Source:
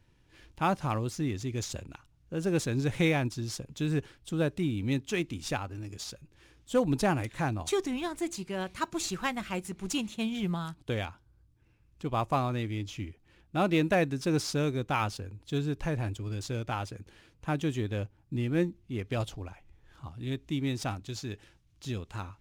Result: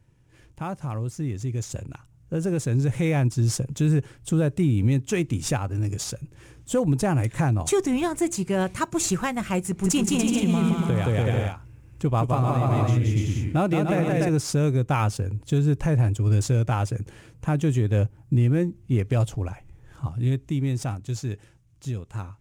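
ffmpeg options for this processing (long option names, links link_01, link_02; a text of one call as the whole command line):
ffmpeg -i in.wav -filter_complex "[0:a]asettb=1/sr,asplit=3[link_01][link_02][link_03];[link_01]atrim=end=9.674[link_04];[link_02]atrim=start=9.67:end=14.29,asetpts=PTS-STARTPTS,afade=type=in:duration=0.004:curve=qsin,afade=type=out:start_time=4.616:duration=0.004:curve=qsin,aecho=1:1:170|289|372.3|430.6|471.4:0.794|0.631|0.501|0.398|0.316,atrim=end_sample=203742[link_05];[link_03]atrim=start=14.286[link_06];[link_04][link_05]acrossfade=duration=0.004:curve1=hsin:curve2=qsin[link_07];[link_07][link_06]acrossfade=duration=0.004:curve1=qsin:curve2=hsin,equalizer=frequency=125:width_type=o:width=1:gain=10,equalizer=frequency=500:width_type=o:width=1:gain=3,equalizer=frequency=4000:width_type=o:width=1:gain=-7,equalizer=frequency=8000:width_type=o:width=1:gain=6,alimiter=limit=-21.5dB:level=0:latency=1:release=282,dynaudnorm=framelen=370:gausssize=13:maxgain=8.5dB" out.wav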